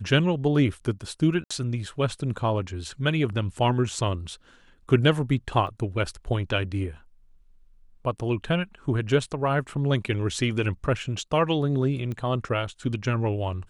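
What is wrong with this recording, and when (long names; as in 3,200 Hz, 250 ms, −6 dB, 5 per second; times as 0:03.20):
0:01.44–0:01.50: drop-out 65 ms
0:05.67: drop-out 2.5 ms
0:12.12: click −22 dBFS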